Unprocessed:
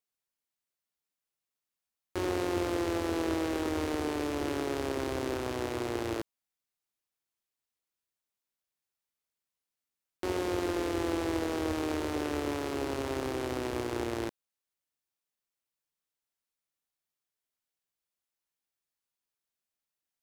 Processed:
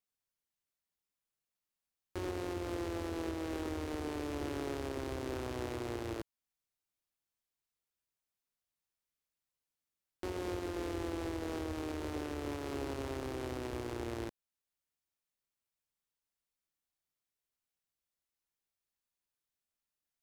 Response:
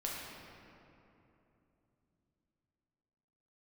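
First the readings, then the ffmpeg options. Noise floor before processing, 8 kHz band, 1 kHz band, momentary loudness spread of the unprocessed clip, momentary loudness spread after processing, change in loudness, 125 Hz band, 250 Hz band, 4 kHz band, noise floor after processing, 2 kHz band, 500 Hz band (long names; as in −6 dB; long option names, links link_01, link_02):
below −85 dBFS, −7.5 dB, −7.5 dB, 4 LU, 3 LU, −7.0 dB, −3.0 dB, −7.0 dB, −7.5 dB, below −85 dBFS, −7.5 dB, −7.0 dB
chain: -af "lowshelf=frequency=120:gain=8,alimiter=level_in=0.5dB:limit=-24dB:level=0:latency=1:release=380,volume=-0.5dB,volume=-3dB"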